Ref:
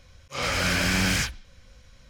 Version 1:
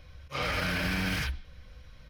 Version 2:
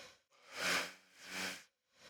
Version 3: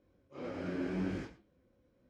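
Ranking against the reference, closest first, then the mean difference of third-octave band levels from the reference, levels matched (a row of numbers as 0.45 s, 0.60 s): 1, 3, 2; 4.0 dB, 9.5 dB, 14.5 dB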